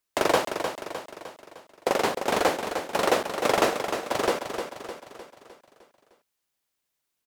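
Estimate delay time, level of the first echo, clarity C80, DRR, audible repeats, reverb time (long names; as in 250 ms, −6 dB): 305 ms, −7.5 dB, no reverb audible, no reverb audible, 5, no reverb audible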